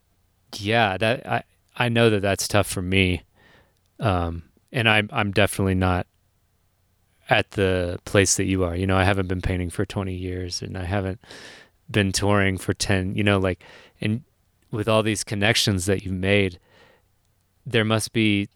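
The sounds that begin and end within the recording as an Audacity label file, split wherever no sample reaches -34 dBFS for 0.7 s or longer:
4.000000	6.020000	sound
7.290000	16.550000	sound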